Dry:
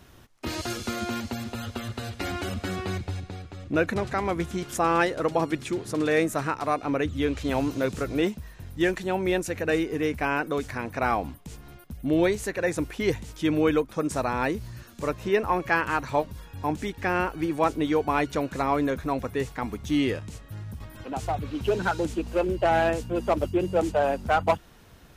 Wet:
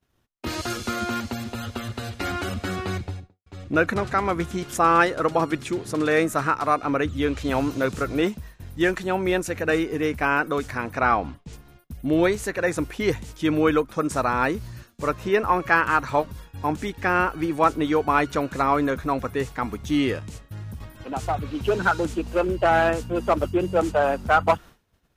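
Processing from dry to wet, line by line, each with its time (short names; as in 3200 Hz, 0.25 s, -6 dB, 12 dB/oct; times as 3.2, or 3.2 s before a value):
2.96–3.46 studio fade out
11.01–11.53 LPF 5400 Hz
whole clip: expander -39 dBFS; dynamic EQ 1300 Hz, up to +7 dB, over -43 dBFS, Q 2.5; gain +2 dB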